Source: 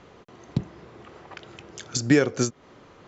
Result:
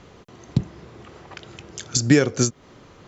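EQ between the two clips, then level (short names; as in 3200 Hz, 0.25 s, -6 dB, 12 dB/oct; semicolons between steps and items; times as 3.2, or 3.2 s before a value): low shelf 210 Hz +8 dB; high shelf 3700 Hz +8.5 dB; 0.0 dB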